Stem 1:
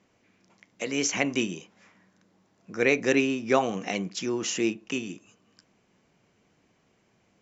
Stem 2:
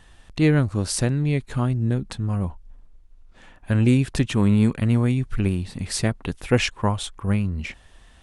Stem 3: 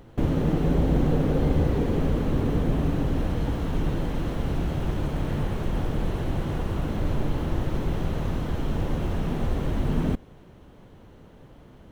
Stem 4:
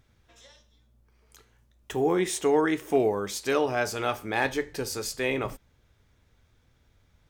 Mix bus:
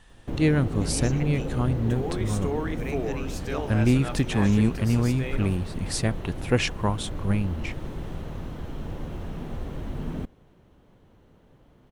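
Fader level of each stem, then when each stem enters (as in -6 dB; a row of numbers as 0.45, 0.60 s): -15.0, -3.0, -7.5, -8.0 dB; 0.00, 0.00, 0.10, 0.00 s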